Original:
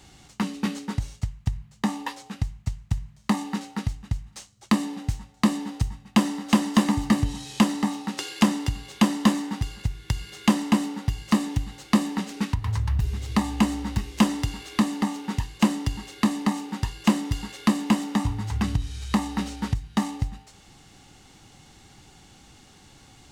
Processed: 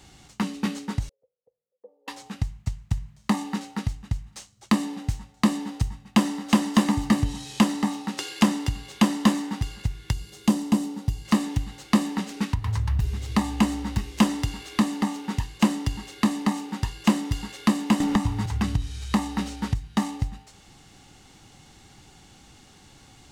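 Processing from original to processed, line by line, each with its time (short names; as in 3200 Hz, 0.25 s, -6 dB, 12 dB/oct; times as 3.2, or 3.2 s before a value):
1.09–2.08 Butterworth band-pass 500 Hz, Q 7.8
10.13–11.25 bell 1800 Hz -9.5 dB 2.2 oct
18–18.46 three-band squash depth 100%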